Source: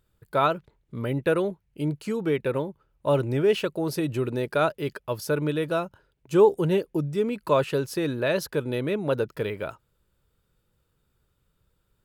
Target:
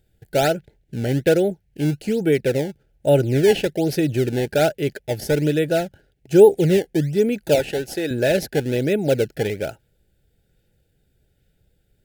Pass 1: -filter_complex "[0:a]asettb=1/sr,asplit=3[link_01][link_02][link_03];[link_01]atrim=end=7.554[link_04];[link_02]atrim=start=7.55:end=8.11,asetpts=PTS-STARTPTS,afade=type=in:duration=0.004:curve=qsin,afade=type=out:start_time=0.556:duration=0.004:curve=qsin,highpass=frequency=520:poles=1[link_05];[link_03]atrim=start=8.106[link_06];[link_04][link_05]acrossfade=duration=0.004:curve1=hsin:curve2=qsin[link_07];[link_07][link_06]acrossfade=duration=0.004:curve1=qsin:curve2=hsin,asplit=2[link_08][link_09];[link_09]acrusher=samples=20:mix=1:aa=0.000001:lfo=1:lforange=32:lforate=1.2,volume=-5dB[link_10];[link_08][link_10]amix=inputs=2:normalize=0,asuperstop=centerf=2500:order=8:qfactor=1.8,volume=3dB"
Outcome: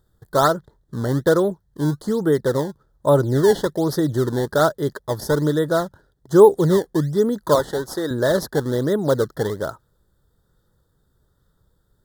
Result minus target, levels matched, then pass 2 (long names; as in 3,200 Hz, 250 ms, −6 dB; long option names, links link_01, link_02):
1,000 Hz band +5.5 dB
-filter_complex "[0:a]asettb=1/sr,asplit=3[link_01][link_02][link_03];[link_01]atrim=end=7.554[link_04];[link_02]atrim=start=7.55:end=8.11,asetpts=PTS-STARTPTS,afade=type=in:duration=0.004:curve=qsin,afade=type=out:start_time=0.556:duration=0.004:curve=qsin,highpass=frequency=520:poles=1[link_05];[link_03]atrim=start=8.106[link_06];[link_04][link_05]acrossfade=duration=0.004:curve1=hsin:curve2=qsin[link_07];[link_07][link_06]acrossfade=duration=0.004:curve1=qsin:curve2=hsin,asplit=2[link_08][link_09];[link_09]acrusher=samples=20:mix=1:aa=0.000001:lfo=1:lforange=32:lforate=1.2,volume=-5dB[link_10];[link_08][link_10]amix=inputs=2:normalize=0,asuperstop=centerf=1100:order=8:qfactor=1.8,volume=3dB"